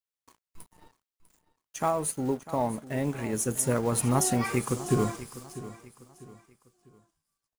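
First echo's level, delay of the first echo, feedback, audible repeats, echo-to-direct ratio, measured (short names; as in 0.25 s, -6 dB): -15.5 dB, 0.648 s, 36%, 3, -15.0 dB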